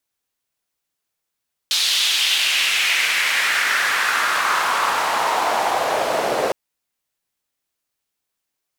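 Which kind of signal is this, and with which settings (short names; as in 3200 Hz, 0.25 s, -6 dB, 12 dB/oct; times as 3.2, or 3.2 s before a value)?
swept filtered noise white, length 4.81 s bandpass, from 3900 Hz, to 540 Hz, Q 2.6, exponential, gain ramp +6 dB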